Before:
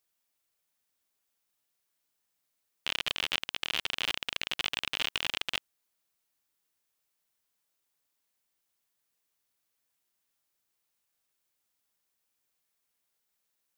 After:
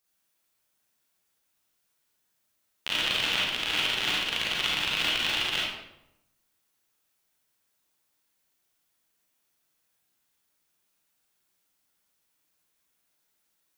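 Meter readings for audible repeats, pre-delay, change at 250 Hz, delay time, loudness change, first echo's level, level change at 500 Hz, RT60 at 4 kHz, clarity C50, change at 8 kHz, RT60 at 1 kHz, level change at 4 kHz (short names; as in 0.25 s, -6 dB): none, 32 ms, +8.5 dB, none, +6.0 dB, none, +6.5 dB, 0.60 s, -0.5 dB, +5.5 dB, 0.80 s, +6.0 dB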